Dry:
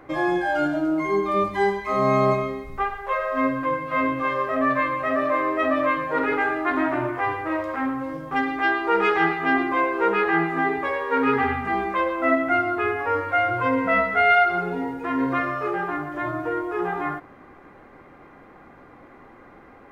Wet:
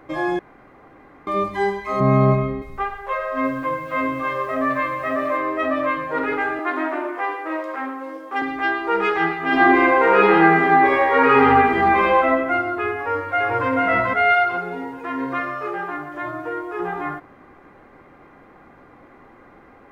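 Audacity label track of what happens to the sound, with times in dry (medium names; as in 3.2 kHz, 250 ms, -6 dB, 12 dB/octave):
0.390000	1.270000	room tone
2.000000	2.620000	tone controls bass +12 dB, treble -14 dB
3.230000	5.370000	bit-crushed delay 218 ms, feedback 35%, word length 7-bit, level -15 dB
6.590000	8.420000	steep high-pass 290 Hz
9.460000	12.170000	reverb throw, RT60 1.3 s, DRR -7 dB
12.960000	13.690000	echo throw 440 ms, feedback 30%, level -1 dB
14.340000	16.800000	bass shelf 260 Hz -7 dB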